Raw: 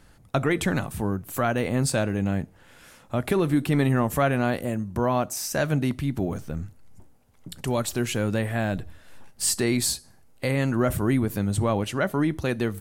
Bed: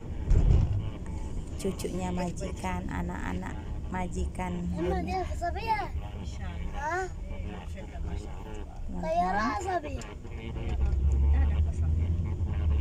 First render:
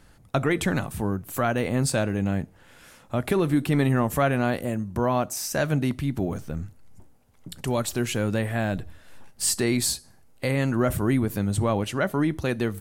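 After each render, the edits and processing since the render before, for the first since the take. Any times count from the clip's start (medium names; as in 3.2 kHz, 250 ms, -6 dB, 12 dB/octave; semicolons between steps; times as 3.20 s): no audible change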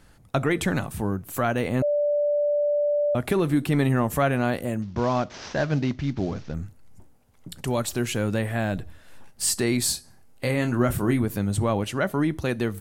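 1.82–3.15 s: bleep 586 Hz -19.5 dBFS; 4.82–6.54 s: CVSD coder 32 kbps; 9.83–11.22 s: doubling 25 ms -8 dB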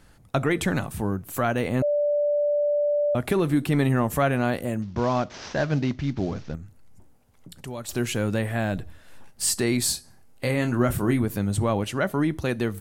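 6.55–7.89 s: compression 1.5:1, threshold -48 dBFS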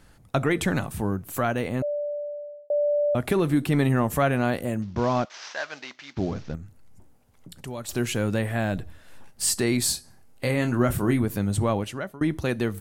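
1.33–2.70 s: fade out; 5.25–6.17 s: high-pass 1 kHz; 11.70–12.21 s: fade out, to -24 dB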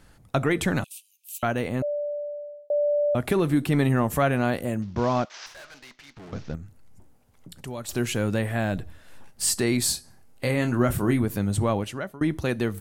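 0.84–1.43 s: steep high-pass 2.5 kHz 96 dB/octave; 5.46–6.33 s: valve stage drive 42 dB, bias 0.7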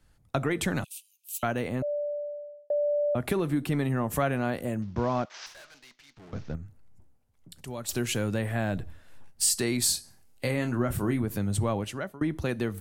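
compression 2.5:1, threshold -26 dBFS, peak gain reduction 7 dB; three bands expanded up and down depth 40%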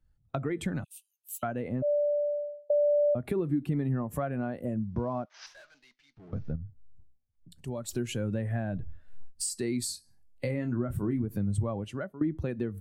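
compression 3:1, threshold -36 dBFS, peak gain reduction 11.5 dB; spectral contrast expander 1.5:1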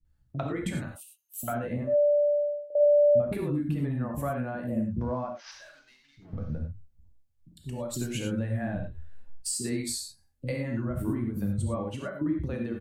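bands offset in time lows, highs 50 ms, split 340 Hz; gated-style reverb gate 130 ms flat, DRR 2 dB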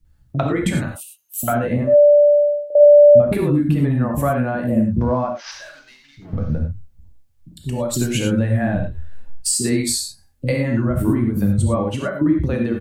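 trim +12 dB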